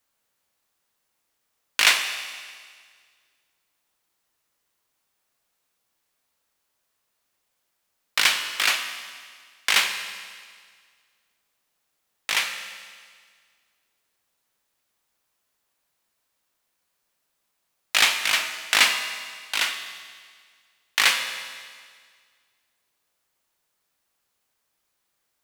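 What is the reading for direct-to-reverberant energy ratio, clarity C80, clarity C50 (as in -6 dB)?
6.0 dB, 9.0 dB, 8.0 dB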